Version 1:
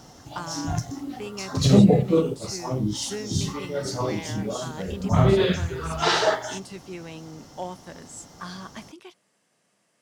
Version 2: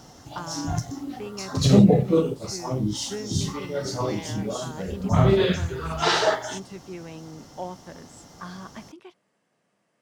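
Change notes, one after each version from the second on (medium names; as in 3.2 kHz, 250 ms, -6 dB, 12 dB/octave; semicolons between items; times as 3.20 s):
speech: add treble shelf 3.3 kHz -12 dB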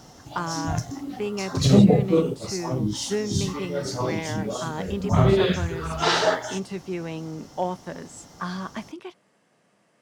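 speech +7.5 dB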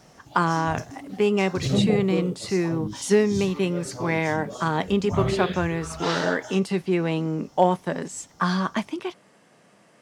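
speech +8.0 dB; background -7.0 dB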